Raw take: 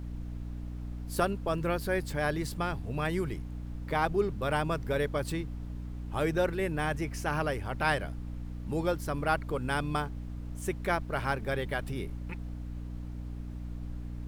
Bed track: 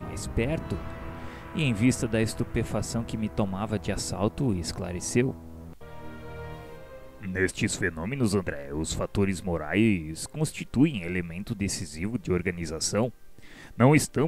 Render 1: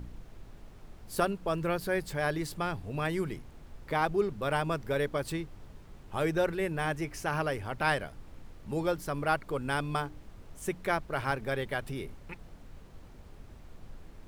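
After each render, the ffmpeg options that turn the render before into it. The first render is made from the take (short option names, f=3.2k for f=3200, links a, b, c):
-af "bandreject=f=60:t=h:w=4,bandreject=f=120:t=h:w=4,bandreject=f=180:t=h:w=4,bandreject=f=240:t=h:w=4,bandreject=f=300:t=h:w=4"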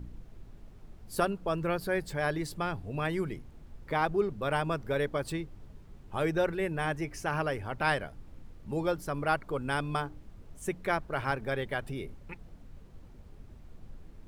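-af "afftdn=nr=6:nf=-51"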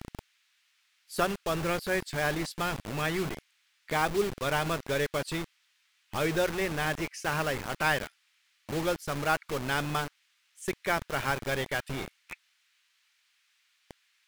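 -filter_complex "[0:a]acrossover=split=1900[a][b];[a]acrusher=bits=5:mix=0:aa=0.000001[c];[b]asplit=2[d][e];[e]highpass=f=720:p=1,volume=13dB,asoftclip=type=tanh:threshold=-20dB[f];[d][f]amix=inputs=2:normalize=0,lowpass=f=3.8k:p=1,volume=-6dB[g];[c][g]amix=inputs=2:normalize=0"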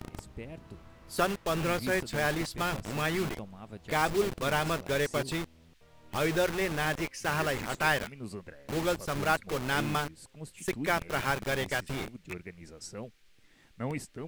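-filter_complex "[1:a]volume=-16dB[a];[0:a][a]amix=inputs=2:normalize=0"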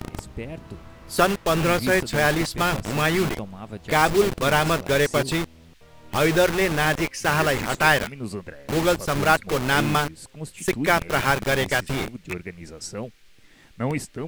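-af "volume=9dB"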